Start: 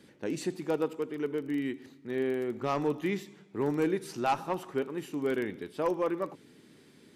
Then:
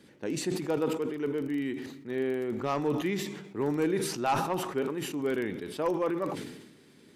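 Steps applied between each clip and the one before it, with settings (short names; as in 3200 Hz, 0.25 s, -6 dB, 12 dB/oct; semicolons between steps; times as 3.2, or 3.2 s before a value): sustainer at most 53 dB/s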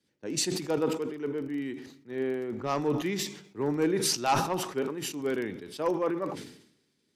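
bell 5400 Hz +5.5 dB 0.82 oct; three-band expander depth 70%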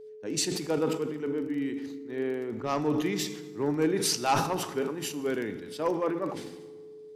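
whine 430 Hz -44 dBFS; FDN reverb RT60 1.5 s, low-frequency decay 1.55×, high-frequency decay 0.7×, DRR 13 dB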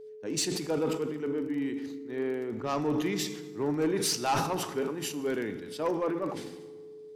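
soft clip -20 dBFS, distortion -18 dB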